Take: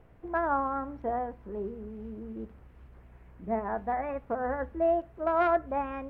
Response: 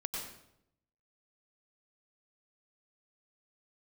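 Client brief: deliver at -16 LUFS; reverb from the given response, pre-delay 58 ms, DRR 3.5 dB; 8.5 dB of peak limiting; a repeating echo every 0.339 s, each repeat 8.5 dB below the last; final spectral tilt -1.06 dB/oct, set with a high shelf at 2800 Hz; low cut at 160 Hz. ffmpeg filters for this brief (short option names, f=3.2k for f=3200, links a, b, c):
-filter_complex "[0:a]highpass=160,highshelf=f=2.8k:g=-6,alimiter=level_in=1dB:limit=-24dB:level=0:latency=1,volume=-1dB,aecho=1:1:339|678|1017|1356:0.376|0.143|0.0543|0.0206,asplit=2[a][b];[1:a]atrim=start_sample=2205,adelay=58[c];[b][c]afir=irnorm=-1:irlink=0,volume=-5dB[d];[a][d]amix=inputs=2:normalize=0,volume=17.5dB"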